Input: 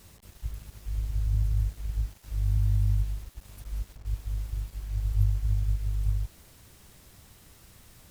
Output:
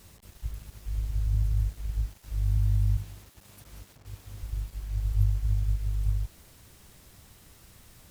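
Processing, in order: 2.97–4.43 s: high-pass 120 Hz 12 dB/octave

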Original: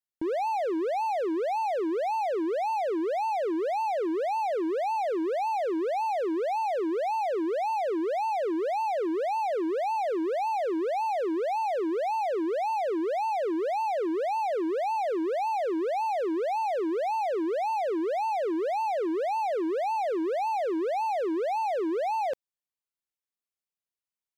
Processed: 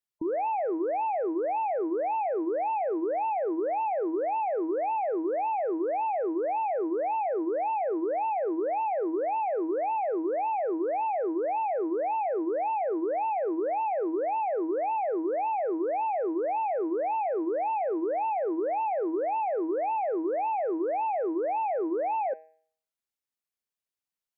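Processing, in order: spectral gate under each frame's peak -25 dB strong; de-hum 159 Hz, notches 17

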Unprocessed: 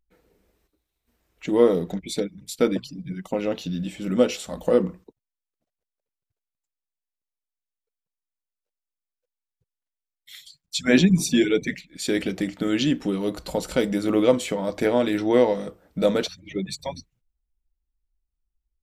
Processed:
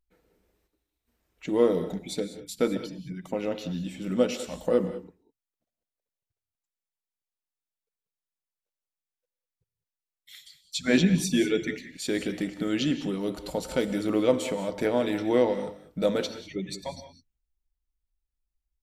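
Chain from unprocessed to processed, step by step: gated-style reverb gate 220 ms rising, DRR 10.5 dB; trim -4.5 dB

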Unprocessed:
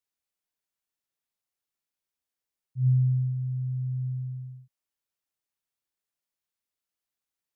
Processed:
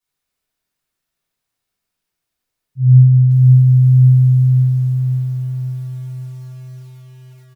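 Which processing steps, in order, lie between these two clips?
delay 107 ms -21.5 dB; simulated room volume 570 m³, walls mixed, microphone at 8.2 m; bit-crushed delay 539 ms, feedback 55%, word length 8-bit, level -3 dB; trim -2.5 dB

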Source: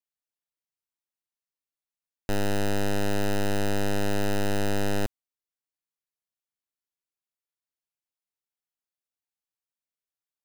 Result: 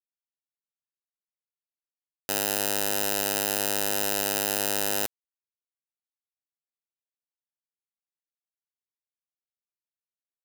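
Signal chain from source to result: RIAA curve recording; small samples zeroed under -30.5 dBFS

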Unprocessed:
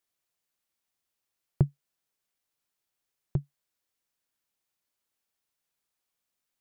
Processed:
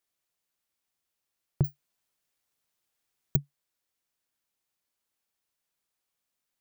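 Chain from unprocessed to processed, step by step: peak limiter -14 dBFS, peak gain reduction 3 dB; 1.64–3.36 s: careless resampling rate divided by 2×, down none, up zero stuff

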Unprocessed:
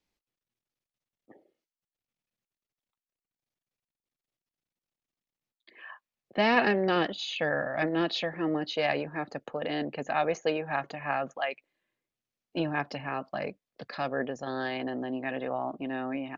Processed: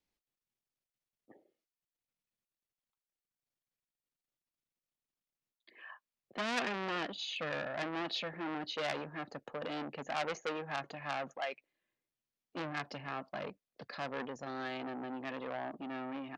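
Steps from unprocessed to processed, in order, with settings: transformer saturation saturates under 3.3 kHz; trim -5 dB

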